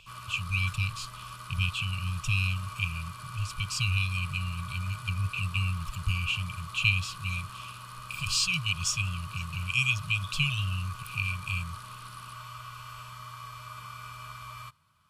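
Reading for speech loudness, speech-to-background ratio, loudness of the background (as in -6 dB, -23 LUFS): -30.5 LUFS, 12.5 dB, -43.0 LUFS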